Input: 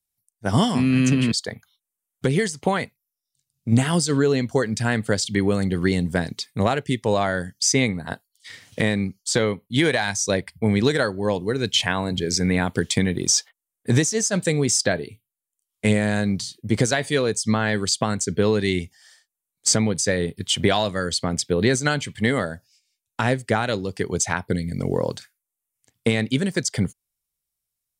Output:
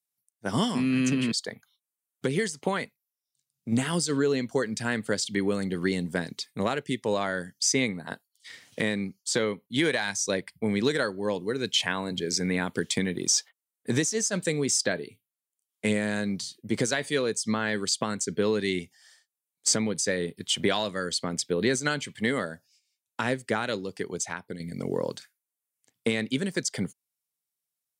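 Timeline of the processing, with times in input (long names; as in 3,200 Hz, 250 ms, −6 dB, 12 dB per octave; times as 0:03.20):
0:23.74–0:24.60: fade out, to −9 dB
whole clip: high-pass filter 180 Hz 12 dB per octave; dynamic equaliser 730 Hz, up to −5 dB, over −38 dBFS, Q 3; level −4.5 dB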